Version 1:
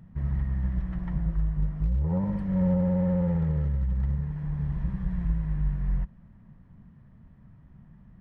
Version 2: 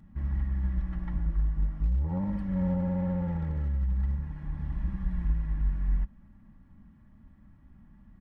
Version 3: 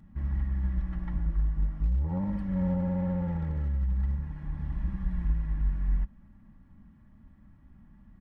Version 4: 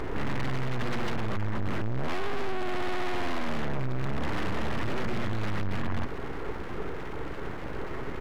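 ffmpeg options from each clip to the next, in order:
-af "equalizer=f=520:t=o:w=0.24:g=-10.5,aecho=1:1:3.6:0.61,volume=0.75"
-af anull
-filter_complex "[0:a]asplit=2[s0][s1];[s1]highpass=f=720:p=1,volume=70.8,asoftclip=type=tanh:threshold=0.133[s2];[s0][s2]amix=inputs=2:normalize=0,lowpass=f=1300:p=1,volume=0.501,alimiter=level_in=1.5:limit=0.0631:level=0:latency=1:release=46,volume=0.668,aeval=exprs='abs(val(0))':c=same,volume=2.11"

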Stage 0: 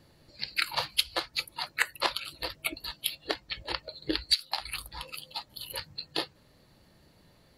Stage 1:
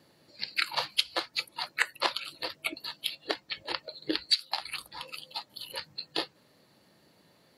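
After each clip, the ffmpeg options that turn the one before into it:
-filter_complex "[0:a]highpass=180,acrossover=split=9800[s0][s1];[s1]acompressor=threshold=0.00141:ratio=4:attack=1:release=60[s2];[s0][s2]amix=inputs=2:normalize=0"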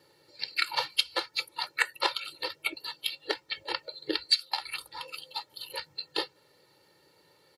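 -af "lowshelf=f=100:g=-9,aecho=1:1:2.2:0.77,volume=0.841"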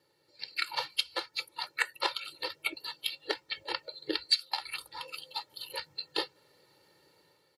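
-af "dynaudnorm=f=140:g=7:m=2.51,volume=0.355"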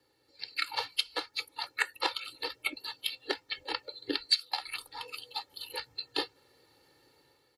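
-af "afreqshift=-29"

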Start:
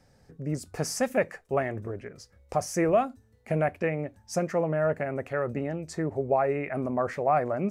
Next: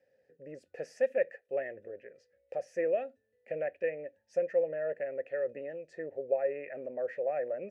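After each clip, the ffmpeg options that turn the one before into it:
-filter_complex "[0:a]asplit=3[s0][s1][s2];[s0]bandpass=f=530:t=q:w=8,volume=1[s3];[s1]bandpass=f=1840:t=q:w=8,volume=0.501[s4];[s2]bandpass=f=2480:t=q:w=8,volume=0.355[s5];[s3][s4][s5]amix=inputs=3:normalize=0,volume=1.19"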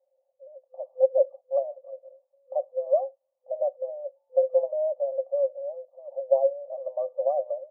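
-af "afftfilt=real='re*between(b*sr/4096,510,1200)':imag='im*between(b*sr/4096,510,1200)':win_size=4096:overlap=0.75,dynaudnorm=f=220:g=5:m=2.66"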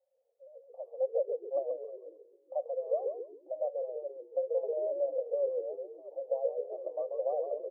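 -filter_complex "[0:a]alimiter=limit=0.158:level=0:latency=1:release=407,asplit=2[s0][s1];[s1]asplit=4[s2][s3][s4][s5];[s2]adelay=136,afreqshift=-56,volume=0.631[s6];[s3]adelay=272,afreqshift=-112,volume=0.214[s7];[s4]adelay=408,afreqshift=-168,volume=0.0733[s8];[s5]adelay=544,afreqshift=-224,volume=0.0248[s9];[s6][s7][s8][s9]amix=inputs=4:normalize=0[s10];[s0][s10]amix=inputs=2:normalize=0,volume=0.473"

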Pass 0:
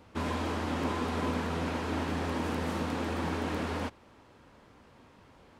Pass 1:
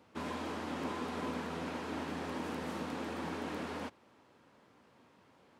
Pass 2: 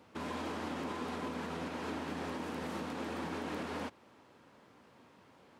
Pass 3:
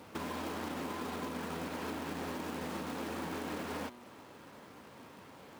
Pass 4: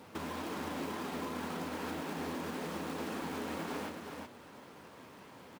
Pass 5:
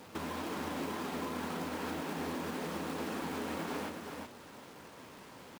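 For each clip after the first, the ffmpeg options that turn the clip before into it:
-af "highpass=140,volume=0.501"
-af "alimiter=level_in=2.82:limit=0.0631:level=0:latency=1:release=144,volume=0.355,volume=1.41"
-af "bandreject=f=121.2:t=h:w=4,bandreject=f=242.4:t=h:w=4,bandreject=f=363.6:t=h:w=4,bandreject=f=484.8:t=h:w=4,bandreject=f=606:t=h:w=4,bandreject=f=727.2:t=h:w=4,bandreject=f=848.4:t=h:w=4,bandreject=f=969.6:t=h:w=4,bandreject=f=1090.8:t=h:w=4,bandreject=f=1212:t=h:w=4,bandreject=f=1333.2:t=h:w=4,bandreject=f=1454.4:t=h:w=4,bandreject=f=1575.6:t=h:w=4,bandreject=f=1696.8:t=h:w=4,bandreject=f=1818:t=h:w=4,bandreject=f=1939.2:t=h:w=4,bandreject=f=2060.4:t=h:w=4,bandreject=f=2181.6:t=h:w=4,bandreject=f=2302.8:t=h:w=4,bandreject=f=2424:t=h:w=4,bandreject=f=2545.2:t=h:w=4,bandreject=f=2666.4:t=h:w=4,bandreject=f=2787.6:t=h:w=4,bandreject=f=2908.8:t=h:w=4,bandreject=f=3030:t=h:w=4,bandreject=f=3151.2:t=h:w=4,bandreject=f=3272.4:t=h:w=4,bandreject=f=3393.6:t=h:w=4,bandreject=f=3514.8:t=h:w=4,bandreject=f=3636:t=h:w=4,bandreject=f=3757.2:t=h:w=4,bandreject=f=3878.4:t=h:w=4,bandreject=f=3999.6:t=h:w=4,bandreject=f=4120.8:t=h:w=4,bandreject=f=4242:t=h:w=4,acrusher=bits=3:mode=log:mix=0:aa=0.000001,acompressor=threshold=0.00447:ratio=3,volume=2.51"
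-af "flanger=delay=4.2:depth=8.5:regen=-42:speed=1.9:shape=triangular,aecho=1:1:369:0.562,volume=1.41"
-af "acrusher=bits=8:mix=0:aa=0.5,volume=1.12"

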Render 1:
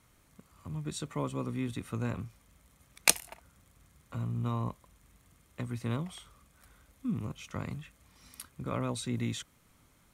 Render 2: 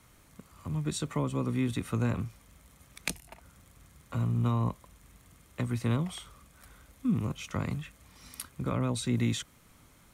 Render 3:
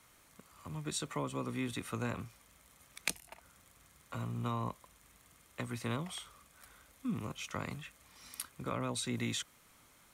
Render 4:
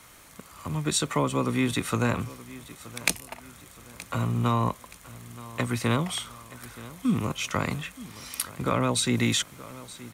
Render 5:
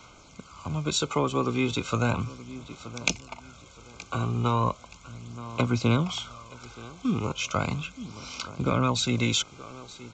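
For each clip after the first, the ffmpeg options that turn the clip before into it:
-filter_complex "[0:a]acrossover=split=290[s0][s1];[s1]acompressor=threshold=0.0141:ratio=10[s2];[s0][s2]amix=inputs=2:normalize=0,volume=1.88"
-af "lowshelf=f=320:g=-11.5,volume=0.891"
-filter_complex "[0:a]asplit=2[s0][s1];[s1]asoftclip=type=hard:threshold=0.0376,volume=0.631[s2];[s0][s2]amix=inputs=2:normalize=0,aecho=1:1:924|1848|2772:0.126|0.0516|0.0212,volume=2.51"
-af "asuperstop=centerf=1800:order=12:qfactor=3.5,aphaser=in_gain=1:out_gain=1:delay=2.6:decay=0.34:speed=0.36:type=sinusoidal,aresample=16000,aresample=44100"

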